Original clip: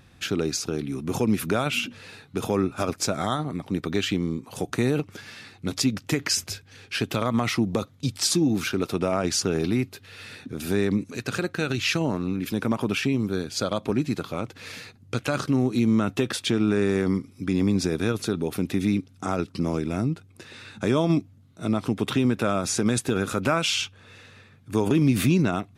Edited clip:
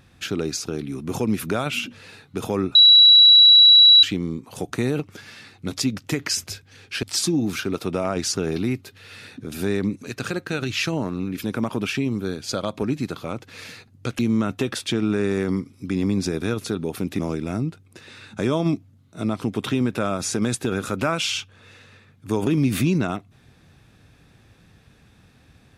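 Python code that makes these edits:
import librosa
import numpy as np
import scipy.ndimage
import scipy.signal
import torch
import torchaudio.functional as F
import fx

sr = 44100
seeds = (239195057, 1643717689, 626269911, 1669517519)

y = fx.edit(x, sr, fx.bleep(start_s=2.75, length_s=1.28, hz=3910.0, db=-7.5),
    fx.cut(start_s=7.03, length_s=1.08),
    fx.cut(start_s=15.27, length_s=0.5),
    fx.cut(start_s=18.77, length_s=0.86), tone=tone)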